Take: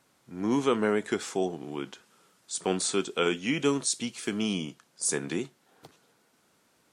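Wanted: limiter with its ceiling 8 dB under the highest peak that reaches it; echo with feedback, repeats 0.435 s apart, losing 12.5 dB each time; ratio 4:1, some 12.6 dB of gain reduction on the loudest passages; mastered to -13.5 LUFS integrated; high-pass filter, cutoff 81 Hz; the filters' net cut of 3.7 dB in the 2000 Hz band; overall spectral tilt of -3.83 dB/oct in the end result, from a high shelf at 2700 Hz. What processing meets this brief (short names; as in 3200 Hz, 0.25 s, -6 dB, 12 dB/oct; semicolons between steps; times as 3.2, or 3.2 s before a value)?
HPF 81 Hz; bell 2000 Hz -3.5 dB; high shelf 2700 Hz -3 dB; compressor 4:1, threshold -37 dBFS; limiter -32 dBFS; feedback echo 0.435 s, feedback 24%, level -12.5 dB; gain +29.5 dB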